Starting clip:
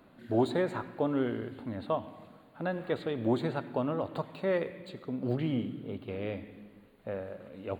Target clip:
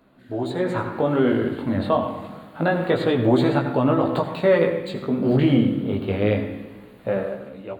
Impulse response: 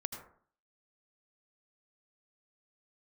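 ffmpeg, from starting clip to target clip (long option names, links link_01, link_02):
-filter_complex "[0:a]alimiter=limit=-22dB:level=0:latency=1:release=83,flanger=delay=15:depth=6.6:speed=0.27,asplit=2[link_01][link_02];[1:a]atrim=start_sample=2205[link_03];[link_02][link_03]afir=irnorm=-1:irlink=0,volume=3.5dB[link_04];[link_01][link_04]amix=inputs=2:normalize=0,dynaudnorm=framelen=290:gausssize=5:maxgain=14.5dB,volume=-3.5dB"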